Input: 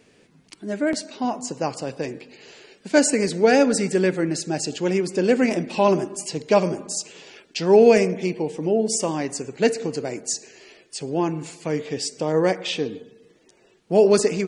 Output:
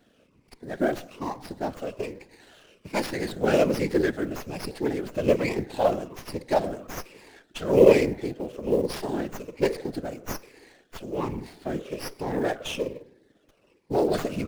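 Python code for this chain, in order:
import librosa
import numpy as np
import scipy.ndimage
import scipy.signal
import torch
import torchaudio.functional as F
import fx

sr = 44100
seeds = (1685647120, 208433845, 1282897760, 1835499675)

y = fx.spec_ripple(x, sr, per_octave=0.82, drift_hz=-1.2, depth_db=14)
y = fx.quant_float(y, sr, bits=4)
y = fx.whisperise(y, sr, seeds[0])
y = fx.running_max(y, sr, window=5)
y = y * 10.0 ** (-7.5 / 20.0)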